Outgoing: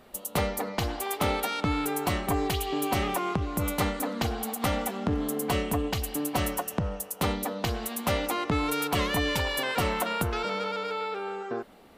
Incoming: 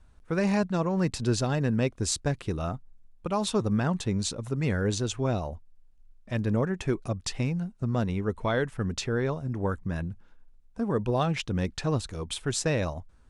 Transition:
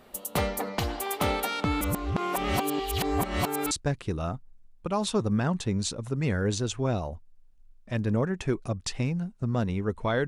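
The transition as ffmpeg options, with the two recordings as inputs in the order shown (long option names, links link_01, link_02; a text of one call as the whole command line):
ffmpeg -i cue0.wav -i cue1.wav -filter_complex "[0:a]apad=whole_dur=10.27,atrim=end=10.27,asplit=2[link_01][link_02];[link_01]atrim=end=1.812[link_03];[link_02]atrim=start=1.808:end=3.712,asetpts=PTS-STARTPTS,areverse[link_04];[1:a]atrim=start=2.108:end=8.67[link_05];[link_03][link_04]acrossfade=duration=0.004:curve1=hsin:curve2=hsin[link_06];[link_06][link_05]acrossfade=duration=0.004:curve1=hsin:curve2=hsin" out.wav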